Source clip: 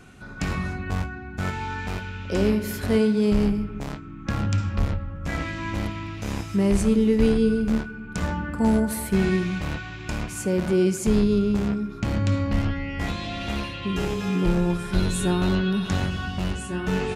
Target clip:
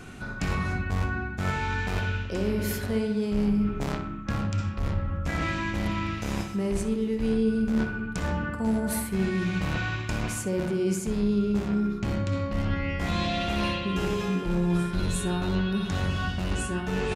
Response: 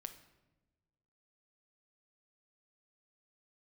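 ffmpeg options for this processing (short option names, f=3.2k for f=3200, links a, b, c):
-filter_complex "[0:a]areverse,acompressor=threshold=-30dB:ratio=6,areverse,asplit=2[a][b];[b]adelay=63,lowpass=f=3.2k:p=1,volume=-7.5dB,asplit=2[c][d];[d]adelay=63,lowpass=f=3.2k:p=1,volume=0.52,asplit=2[e][f];[f]adelay=63,lowpass=f=3.2k:p=1,volume=0.52,asplit=2[g][h];[h]adelay=63,lowpass=f=3.2k:p=1,volume=0.52,asplit=2[i][j];[j]adelay=63,lowpass=f=3.2k:p=1,volume=0.52,asplit=2[k][l];[l]adelay=63,lowpass=f=3.2k:p=1,volume=0.52[m];[a][c][e][g][i][k][m]amix=inputs=7:normalize=0,volume=5dB"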